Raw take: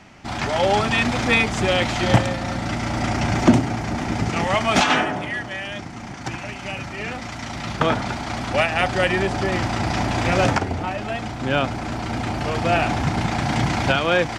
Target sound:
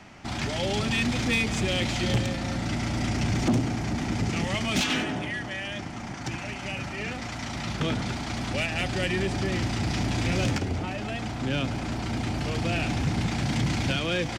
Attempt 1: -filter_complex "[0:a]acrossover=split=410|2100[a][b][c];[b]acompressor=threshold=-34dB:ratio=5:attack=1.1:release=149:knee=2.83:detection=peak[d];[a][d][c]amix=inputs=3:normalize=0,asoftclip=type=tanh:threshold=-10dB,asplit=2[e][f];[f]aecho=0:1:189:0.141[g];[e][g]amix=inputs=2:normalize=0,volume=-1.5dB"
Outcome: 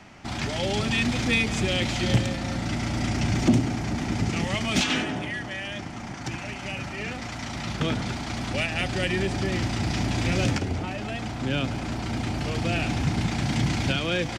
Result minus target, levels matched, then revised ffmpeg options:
soft clip: distortion -7 dB
-filter_complex "[0:a]acrossover=split=410|2100[a][b][c];[b]acompressor=threshold=-34dB:ratio=5:attack=1.1:release=149:knee=2.83:detection=peak[d];[a][d][c]amix=inputs=3:normalize=0,asoftclip=type=tanh:threshold=-17dB,asplit=2[e][f];[f]aecho=0:1:189:0.141[g];[e][g]amix=inputs=2:normalize=0,volume=-1.5dB"

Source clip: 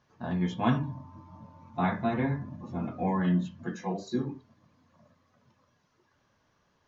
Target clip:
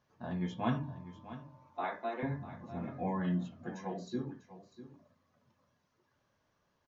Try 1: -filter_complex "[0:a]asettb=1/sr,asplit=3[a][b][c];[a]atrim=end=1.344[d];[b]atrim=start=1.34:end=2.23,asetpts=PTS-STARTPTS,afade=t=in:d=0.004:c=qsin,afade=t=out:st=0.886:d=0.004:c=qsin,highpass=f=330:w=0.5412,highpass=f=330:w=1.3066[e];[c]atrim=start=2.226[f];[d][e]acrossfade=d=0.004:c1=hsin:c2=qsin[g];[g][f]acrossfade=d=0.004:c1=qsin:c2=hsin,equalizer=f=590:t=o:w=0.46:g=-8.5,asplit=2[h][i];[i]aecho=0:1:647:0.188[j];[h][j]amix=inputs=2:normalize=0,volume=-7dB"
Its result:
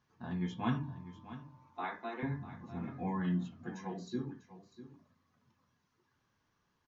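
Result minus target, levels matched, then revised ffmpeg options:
500 Hz band -3.5 dB
-filter_complex "[0:a]asettb=1/sr,asplit=3[a][b][c];[a]atrim=end=1.344[d];[b]atrim=start=1.34:end=2.23,asetpts=PTS-STARTPTS,afade=t=in:d=0.004:c=qsin,afade=t=out:st=0.886:d=0.004:c=qsin,highpass=f=330:w=0.5412,highpass=f=330:w=1.3066[e];[c]atrim=start=2.226[f];[d][e]acrossfade=d=0.004:c1=hsin:c2=qsin[g];[g][f]acrossfade=d=0.004:c1=qsin:c2=hsin,equalizer=f=590:t=o:w=0.46:g=3,asplit=2[h][i];[i]aecho=0:1:647:0.188[j];[h][j]amix=inputs=2:normalize=0,volume=-7dB"

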